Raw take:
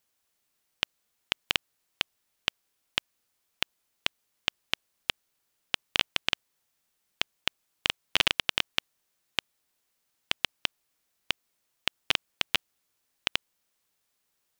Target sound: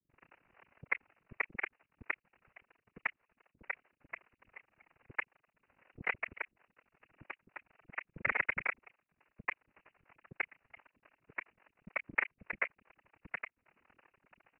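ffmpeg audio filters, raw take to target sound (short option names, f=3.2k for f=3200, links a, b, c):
-filter_complex "[0:a]aeval=exprs='val(0)+0.5*0.0794*sgn(val(0))':c=same,aresample=8000,acrusher=bits=3:mix=0:aa=0.5,aresample=44100,asetrate=31183,aresample=44100,atempo=1.41421,lowshelf=f=71:g=-6,asplit=2[a][b];[b]alimiter=level_in=10dB:limit=-24dB:level=0:latency=1:release=437,volume=-10dB,volume=-2.5dB[c];[a][c]amix=inputs=2:normalize=0,aeval=exprs='val(0)*sin(2*PI*23*n/s)':c=same,acrossover=split=310|3100[d][e][f];[e]adelay=90[g];[f]adelay=120[h];[d][g][h]amix=inputs=3:normalize=0,afftfilt=real='hypot(re,im)*cos(2*PI*random(0))':imag='hypot(re,im)*sin(2*PI*random(1))':win_size=512:overlap=0.75,volume=1dB"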